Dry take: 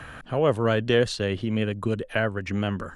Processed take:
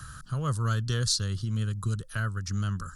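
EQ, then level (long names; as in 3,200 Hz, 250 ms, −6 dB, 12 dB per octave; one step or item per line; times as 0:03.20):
drawn EQ curve 140 Hz 0 dB, 250 Hz −15 dB, 750 Hz −24 dB, 1,300 Hz −2 dB, 2,300 Hz −23 dB, 4,800 Hz +8 dB
+2.0 dB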